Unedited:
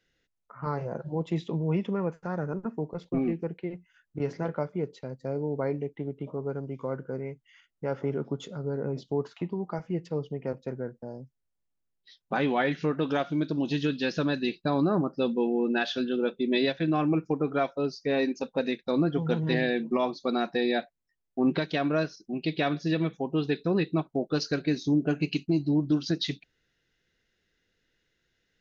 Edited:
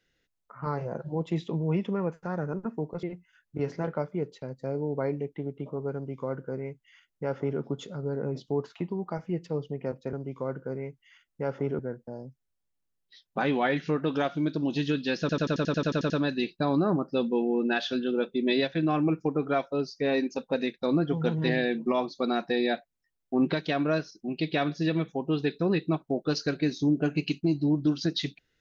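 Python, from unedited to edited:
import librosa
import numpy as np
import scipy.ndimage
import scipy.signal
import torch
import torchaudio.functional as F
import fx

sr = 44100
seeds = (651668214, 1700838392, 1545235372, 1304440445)

y = fx.edit(x, sr, fx.cut(start_s=3.03, length_s=0.61),
    fx.duplicate(start_s=6.56, length_s=1.66, to_s=10.74),
    fx.stutter(start_s=14.15, slice_s=0.09, count=11), tone=tone)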